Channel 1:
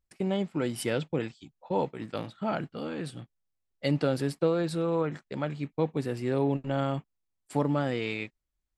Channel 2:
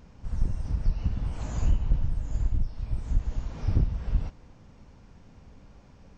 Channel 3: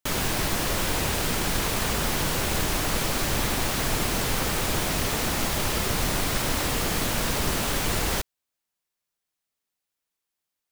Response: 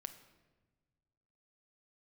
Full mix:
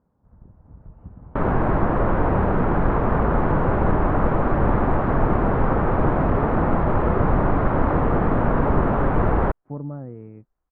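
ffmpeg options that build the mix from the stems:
-filter_complex "[0:a]aemphasis=mode=reproduction:type=riaa,adelay=2150,volume=-19.5dB[a];[1:a]highpass=f=150:p=1,volume=-12.5dB[b];[2:a]adelay=1300,volume=1dB[c];[a][b][c]amix=inputs=3:normalize=0,lowpass=f=1.3k:w=0.5412,lowpass=f=1.3k:w=1.3066,dynaudnorm=f=100:g=17:m=8dB"

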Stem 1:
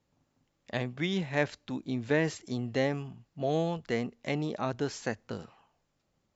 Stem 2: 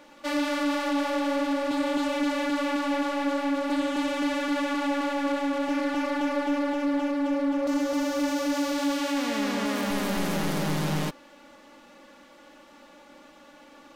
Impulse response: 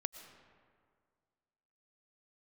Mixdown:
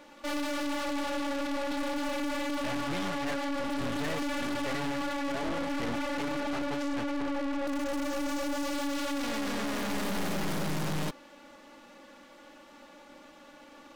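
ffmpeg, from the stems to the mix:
-filter_complex "[0:a]lowpass=6.3k,aphaser=in_gain=1:out_gain=1:delay=3.6:decay=0.56:speed=1:type=triangular,adelay=1900,volume=-4.5dB[a];[1:a]volume=-3.5dB[b];[a][b]amix=inputs=2:normalize=0,acontrast=74,aeval=exprs='(tanh(35.5*val(0)+0.75)-tanh(0.75))/35.5':c=same"

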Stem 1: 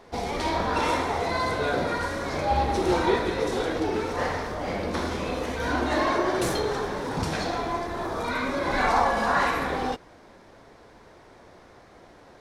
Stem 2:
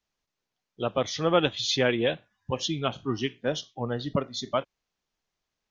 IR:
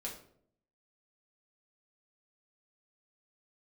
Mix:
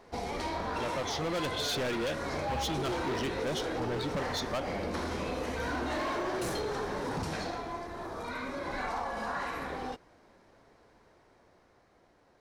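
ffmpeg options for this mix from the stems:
-filter_complex "[0:a]bandreject=f=3.5k:w=23,volume=-5dB,afade=t=out:st=7.14:d=0.49:silence=0.375837[a];[1:a]volume=1dB[b];[a][b]amix=inputs=2:normalize=0,dynaudnorm=f=300:g=11:m=4dB,volume=23.5dB,asoftclip=hard,volume=-23.5dB,acompressor=threshold=-31dB:ratio=6"

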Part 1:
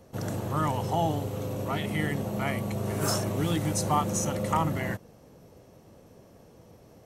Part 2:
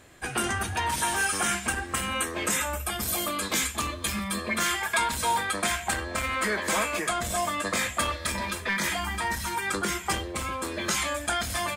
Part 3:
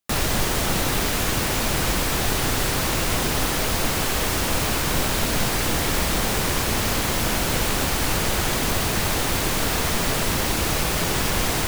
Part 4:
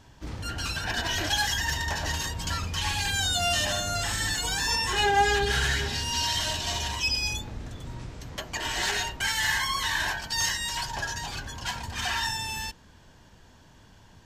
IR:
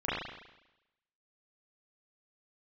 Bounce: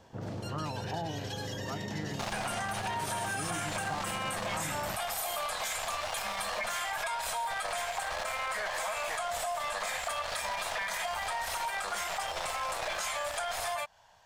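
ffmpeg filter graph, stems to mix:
-filter_complex "[0:a]lowpass=1.8k,volume=-6dB[a];[1:a]adelay=2100,volume=2.5dB[b];[2:a]lowpass=5.6k,aeval=exprs='max(val(0),0)':c=same,adelay=2100,volume=-4dB[c];[3:a]acrossover=split=2300|5000[d][e][f];[d]acompressor=threshold=-44dB:ratio=4[g];[e]acompressor=threshold=-40dB:ratio=4[h];[f]acompressor=threshold=-47dB:ratio=4[i];[g][h][i]amix=inputs=3:normalize=0,volume=-5.5dB[j];[b][c][j]amix=inputs=3:normalize=0,lowshelf=f=460:t=q:w=3:g=-13.5,alimiter=limit=-19.5dB:level=0:latency=1:release=65,volume=0dB[k];[a][k]amix=inputs=2:normalize=0,acompressor=threshold=-32dB:ratio=4"

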